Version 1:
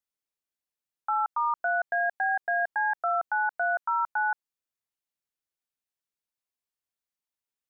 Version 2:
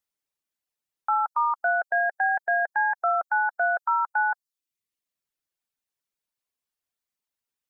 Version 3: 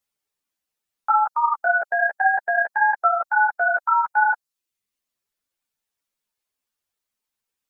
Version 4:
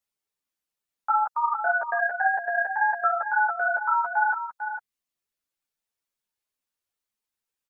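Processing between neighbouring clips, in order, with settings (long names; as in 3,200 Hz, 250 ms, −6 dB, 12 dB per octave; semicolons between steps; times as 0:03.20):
reverb reduction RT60 0.63 s; level +4 dB
string-ensemble chorus; level +7.5 dB
single-tap delay 448 ms −9 dB; level −4.5 dB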